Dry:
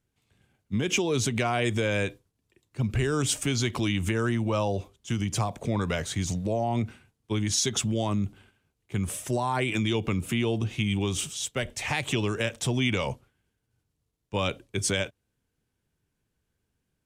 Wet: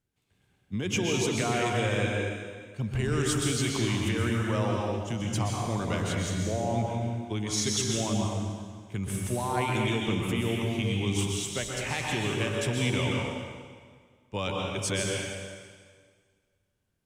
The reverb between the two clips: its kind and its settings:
dense smooth reverb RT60 1.8 s, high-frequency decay 0.9×, pre-delay 110 ms, DRR −1.5 dB
level −4.5 dB

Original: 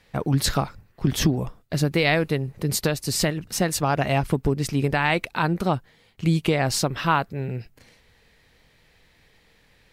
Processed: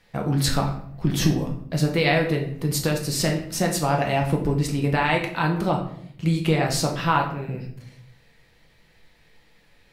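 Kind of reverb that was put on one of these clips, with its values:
rectangular room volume 120 cubic metres, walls mixed, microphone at 0.72 metres
level −2.5 dB

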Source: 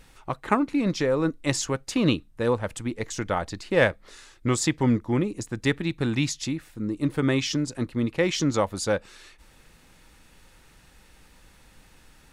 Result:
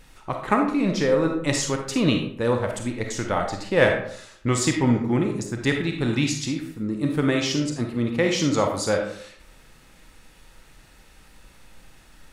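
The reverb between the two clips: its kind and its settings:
comb and all-pass reverb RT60 0.63 s, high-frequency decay 0.65×, pre-delay 5 ms, DRR 2.5 dB
level +1 dB

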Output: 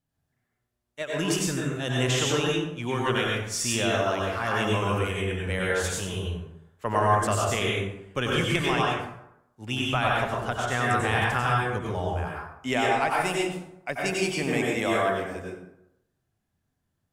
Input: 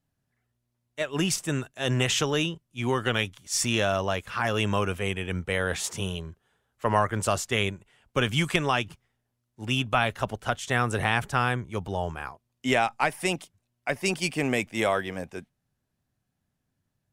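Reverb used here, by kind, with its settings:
dense smooth reverb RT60 0.83 s, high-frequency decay 0.55×, pre-delay 80 ms, DRR −3.5 dB
level −4 dB

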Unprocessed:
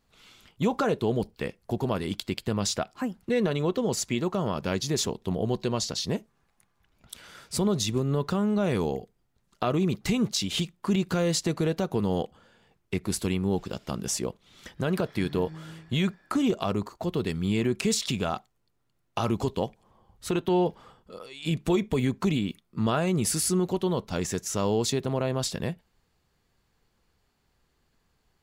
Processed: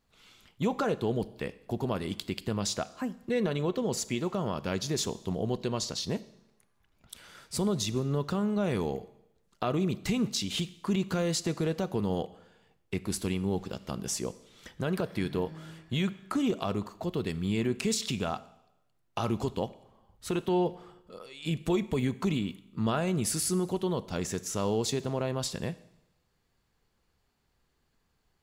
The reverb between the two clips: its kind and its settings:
four-comb reverb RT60 0.86 s, combs from 28 ms, DRR 16.5 dB
level −3.5 dB

